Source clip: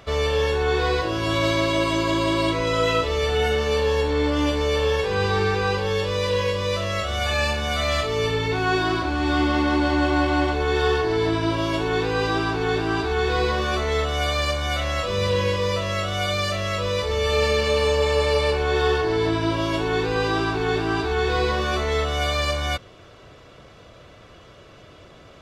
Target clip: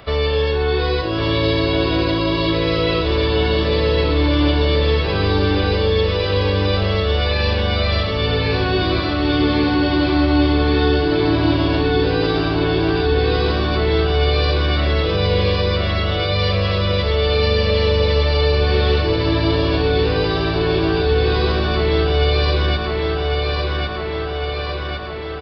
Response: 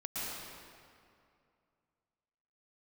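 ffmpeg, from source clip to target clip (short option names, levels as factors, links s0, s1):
-filter_complex "[0:a]aresample=11025,aresample=44100,aecho=1:1:1104|2208|3312|4416|5520|6624|7728|8832:0.596|0.351|0.207|0.122|0.0722|0.0426|0.0251|0.0148,acrossover=split=440|3000[s0][s1][s2];[s1]acompressor=threshold=0.0316:ratio=6[s3];[s0][s3][s2]amix=inputs=3:normalize=0,volume=1.88"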